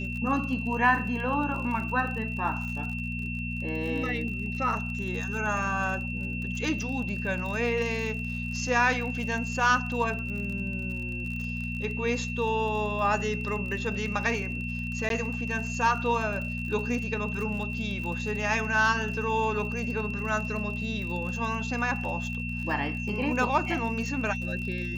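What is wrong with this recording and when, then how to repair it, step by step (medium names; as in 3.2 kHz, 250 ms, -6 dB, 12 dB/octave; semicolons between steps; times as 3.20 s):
crackle 44 per s -35 dBFS
hum 60 Hz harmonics 4 -34 dBFS
whine 2.7 kHz -35 dBFS
15.09–15.10 s: dropout 12 ms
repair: de-click; band-stop 2.7 kHz, Q 30; de-hum 60 Hz, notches 4; interpolate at 15.09 s, 12 ms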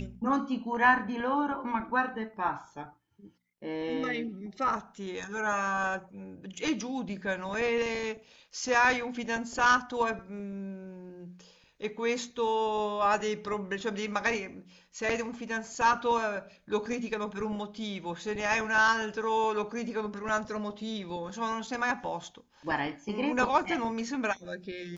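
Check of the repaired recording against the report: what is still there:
nothing left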